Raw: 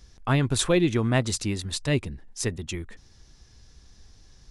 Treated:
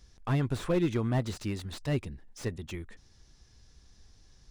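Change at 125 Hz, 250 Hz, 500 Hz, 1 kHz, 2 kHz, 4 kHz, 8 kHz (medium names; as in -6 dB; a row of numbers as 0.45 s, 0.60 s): -5.0 dB, -5.5 dB, -6.5 dB, -7.0 dB, -10.0 dB, -13.0 dB, -17.0 dB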